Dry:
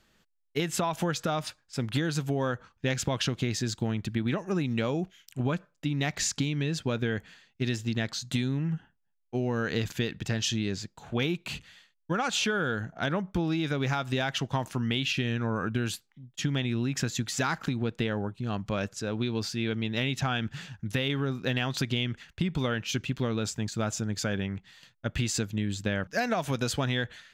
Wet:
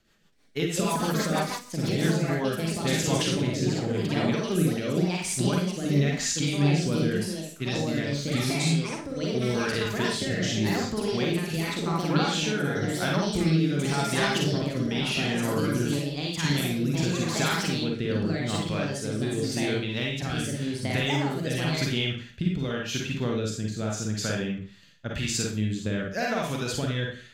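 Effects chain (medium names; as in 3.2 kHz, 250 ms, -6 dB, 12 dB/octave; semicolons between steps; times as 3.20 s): ever faster or slower copies 324 ms, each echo +4 st, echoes 2; Schroeder reverb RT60 0.41 s, DRR -1 dB; rotary cabinet horn 6.3 Hz, later 0.9 Hz, at 1.71 s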